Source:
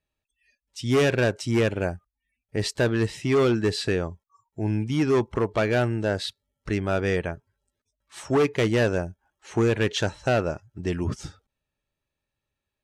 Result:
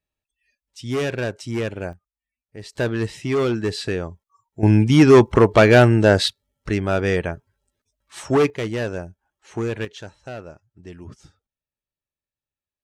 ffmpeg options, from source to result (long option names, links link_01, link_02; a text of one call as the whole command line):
ffmpeg -i in.wav -af "asetnsamples=nb_out_samples=441:pad=0,asendcmd='1.93 volume volume -11dB;2.73 volume volume 0dB;4.63 volume volume 11dB;6.28 volume volume 4dB;8.5 volume volume -3.5dB;9.85 volume volume -12dB',volume=-3dB" out.wav